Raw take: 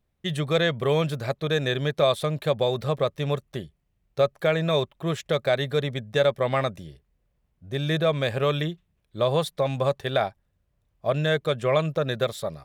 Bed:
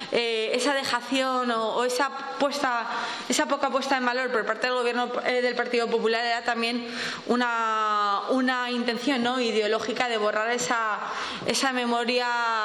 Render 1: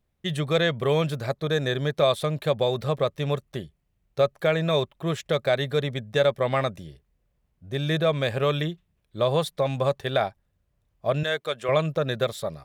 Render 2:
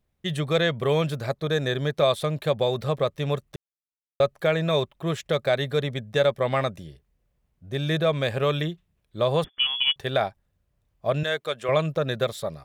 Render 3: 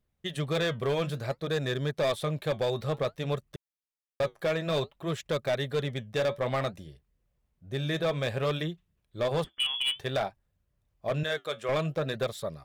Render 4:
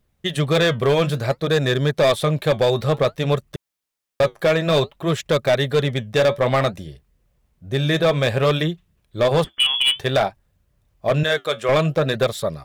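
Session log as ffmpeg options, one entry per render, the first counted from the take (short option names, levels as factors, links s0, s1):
-filter_complex "[0:a]asettb=1/sr,asplit=3[s0][s1][s2];[s0]atrim=end=1.264[s3];[s1]atrim=start=1.26:end=1.93,asetpts=PTS-STARTPTS,afade=t=in:d=0.004:c=qsin,afade=t=out:st=0.666:d=0.004:c=qsin,equalizer=f=2700:t=o:w=0.48:g=-6[s4];[s2]atrim=start=1.926[s5];[s3][s4]acrossfade=d=0.004:c1=hsin:c2=qsin[s6];[s6][s5]acrossfade=d=0.004:c1=qsin:c2=hsin,asettb=1/sr,asplit=3[s7][s8][s9];[s7]atrim=end=11.234[s10];[s8]atrim=start=11.23:end=11.69,asetpts=PTS-STARTPTS,afade=t=in:d=0.004:c=qsin,afade=t=out:st=0.456:d=0.004:c=qsin,highpass=f=700:p=1[s11];[s9]atrim=start=11.686[s12];[s10][s11]acrossfade=d=0.004:c1=hsin:c2=qsin[s13];[s13][s12]acrossfade=d=0.004:c1=qsin:c2=hsin"
-filter_complex "[0:a]asettb=1/sr,asplit=3[s0][s1][s2];[s0]atrim=end=9.444[s3];[s1]atrim=start=9.44:end=9.96,asetpts=PTS-STARTPTS,afade=t=in:d=0.004:c=qsin,afade=t=out:st=0.516:d=0.004:c=qsin,lowpass=f=3000:t=q:w=0.5098,lowpass=f=3000:t=q:w=0.6013,lowpass=f=3000:t=q:w=0.9,lowpass=f=3000:t=q:w=2.563,afreqshift=-3500[s4];[s2]atrim=start=9.956[s5];[s3][s4]acrossfade=d=0.004:c1=hsin:c2=qsin[s6];[s6][s5]acrossfade=d=0.004:c1=qsin:c2=hsin,asplit=3[s7][s8][s9];[s7]atrim=end=3.56,asetpts=PTS-STARTPTS,afade=t=out:st=3.556:d=0.004:c=hsin[s10];[s8]atrim=start=3.56:end=4.2,asetpts=PTS-STARTPTS,volume=0[s11];[s9]atrim=start=4.2,asetpts=PTS-STARTPTS,afade=t=in:d=0.004:c=hsin[s12];[s10][s11][s12]concat=n=3:v=0:a=1"
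-af "flanger=delay=0.6:depth=9.3:regen=-68:speed=0.56:shape=sinusoidal,volume=14.1,asoftclip=hard,volume=0.0708"
-af "volume=3.55"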